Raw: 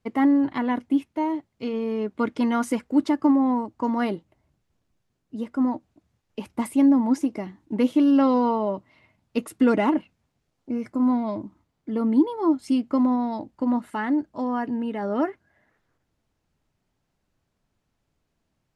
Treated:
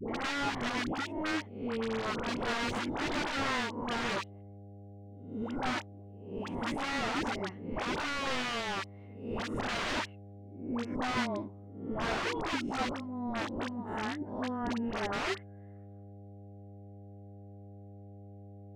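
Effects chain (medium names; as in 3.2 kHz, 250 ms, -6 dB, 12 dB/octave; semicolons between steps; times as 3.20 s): reverse spectral sustain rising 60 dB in 0.55 s; peaking EQ 4.6 kHz -12.5 dB 0.56 oct; 12.87–14.98 s: compressor with a negative ratio -28 dBFS, ratio -1; small resonant body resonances 390/3600 Hz, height 8 dB, ringing for 65 ms; mains buzz 100 Hz, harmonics 8, -42 dBFS -6 dB/octave; integer overflow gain 19.5 dB; distance through air 120 m; phase dispersion highs, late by 90 ms, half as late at 730 Hz; trim -7.5 dB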